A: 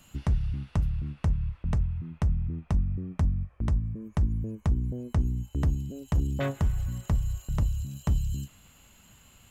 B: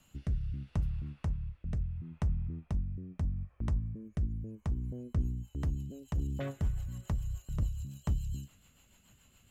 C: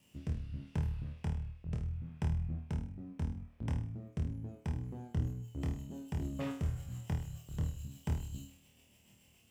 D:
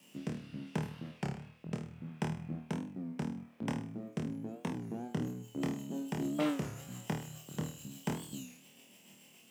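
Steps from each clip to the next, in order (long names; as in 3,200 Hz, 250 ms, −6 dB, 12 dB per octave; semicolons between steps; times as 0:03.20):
rotating-speaker cabinet horn 0.75 Hz, later 7 Hz, at 0:04.76; level −5.5 dB
lower of the sound and its delayed copy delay 0.37 ms; high-pass filter 82 Hz; on a send: flutter between parallel walls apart 4.4 metres, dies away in 0.46 s; on the sum: level −1.5 dB
high-pass filter 180 Hz 24 dB per octave; wow of a warped record 33 1/3 rpm, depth 160 cents; level +7.5 dB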